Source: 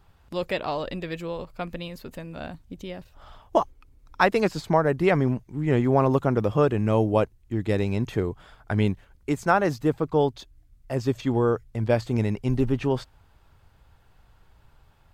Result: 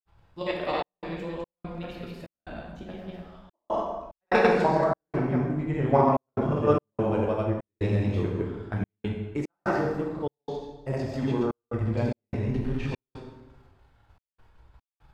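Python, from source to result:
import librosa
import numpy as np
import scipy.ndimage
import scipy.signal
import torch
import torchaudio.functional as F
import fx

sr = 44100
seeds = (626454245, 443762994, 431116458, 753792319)

p1 = fx.high_shelf(x, sr, hz=6500.0, db=-10.0)
p2 = p1 + fx.echo_single(p1, sr, ms=132, db=-5.5, dry=0)
p3 = fx.level_steps(p2, sr, step_db=9)
p4 = fx.granulator(p3, sr, seeds[0], grain_ms=100.0, per_s=20.0, spray_ms=100.0, spread_st=0)
p5 = fx.rev_plate(p4, sr, seeds[1], rt60_s=1.1, hf_ratio=0.75, predelay_ms=0, drr_db=-1.0)
y = fx.step_gate(p5, sr, bpm=73, pattern='xxxx.xx.xxx.x', floor_db=-60.0, edge_ms=4.5)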